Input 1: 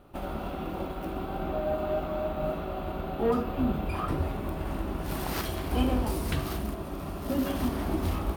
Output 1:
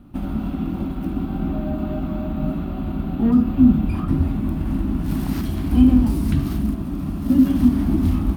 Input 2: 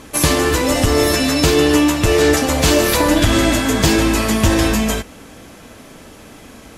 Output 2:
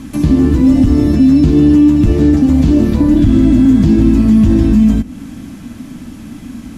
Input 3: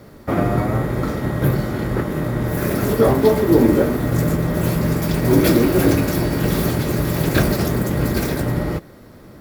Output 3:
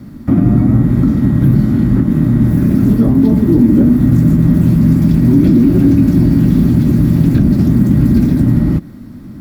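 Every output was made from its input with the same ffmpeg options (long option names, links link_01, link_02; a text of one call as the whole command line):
ffmpeg -i in.wav -filter_complex "[0:a]acrossover=split=6000[link_01][link_02];[link_02]acompressor=threshold=-31dB:ratio=4:attack=1:release=60[link_03];[link_01][link_03]amix=inputs=2:normalize=0,lowshelf=frequency=340:width_type=q:width=3:gain=9.5,acrossover=split=680[link_04][link_05];[link_04]alimiter=limit=-2dB:level=0:latency=1[link_06];[link_05]acompressor=threshold=-35dB:ratio=6[link_07];[link_06][link_07]amix=inputs=2:normalize=0" out.wav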